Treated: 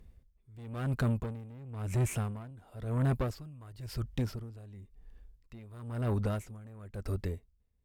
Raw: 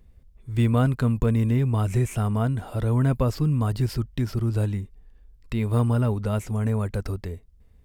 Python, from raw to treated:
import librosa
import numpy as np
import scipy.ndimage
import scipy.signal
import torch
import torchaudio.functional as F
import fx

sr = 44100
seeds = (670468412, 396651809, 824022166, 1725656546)

y = fx.highpass(x, sr, hz=45.0, slope=12, at=(1.22, 2.51))
y = fx.peak_eq(y, sr, hz=220.0, db=-7.0, octaves=1.3, at=(3.35, 4.04))
y = fx.tube_stage(y, sr, drive_db=24.0, bias=0.25)
y = y * 10.0 ** (-21 * (0.5 - 0.5 * np.cos(2.0 * np.pi * 0.97 * np.arange(len(y)) / sr)) / 20.0)